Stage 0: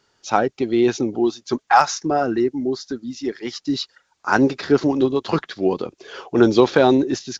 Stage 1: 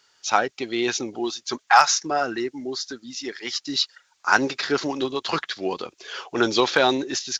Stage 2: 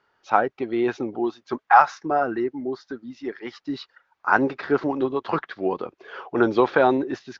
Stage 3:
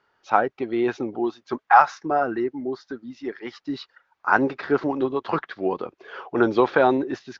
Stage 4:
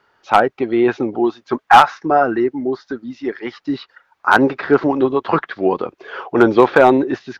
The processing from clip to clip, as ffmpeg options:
-af "tiltshelf=f=740:g=-9,volume=-3dB"
-af "lowpass=1.3k,volume=2.5dB"
-af anull
-filter_complex "[0:a]acrossover=split=3700[a][b];[b]acompressor=threshold=-57dB:ratio=4:attack=1:release=60[c];[a][c]amix=inputs=2:normalize=0,acrossover=split=2800[d][e];[d]asoftclip=type=hard:threshold=-10dB[f];[f][e]amix=inputs=2:normalize=0,volume=8dB"

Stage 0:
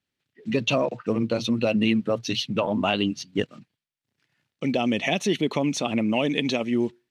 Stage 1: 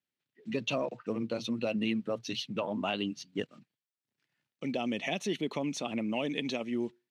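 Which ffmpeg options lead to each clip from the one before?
-af "highpass=130,volume=-9dB"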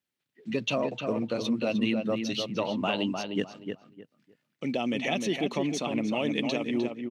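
-filter_complex "[0:a]asplit=2[a][b];[b]adelay=305,lowpass=f=2.5k:p=1,volume=-5dB,asplit=2[c][d];[d]adelay=305,lowpass=f=2.5k:p=1,volume=0.24,asplit=2[e][f];[f]adelay=305,lowpass=f=2.5k:p=1,volume=0.24[g];[a][c][e][g]amix=inputs=4:normalize=0,volume=3.5dB"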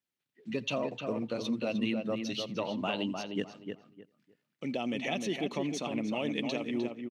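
-af "aecho=1:1:84:0.0708,volume=-4.5dB"

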